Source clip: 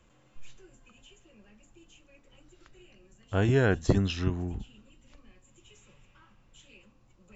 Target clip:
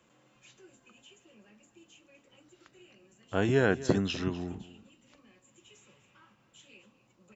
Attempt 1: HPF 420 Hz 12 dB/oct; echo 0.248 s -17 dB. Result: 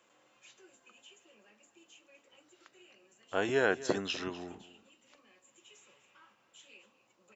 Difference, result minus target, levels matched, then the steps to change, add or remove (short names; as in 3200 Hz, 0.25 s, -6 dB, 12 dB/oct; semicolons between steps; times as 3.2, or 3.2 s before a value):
125 Hz band -11.5 dB
change: HPF 160 Hz 12 dB/oct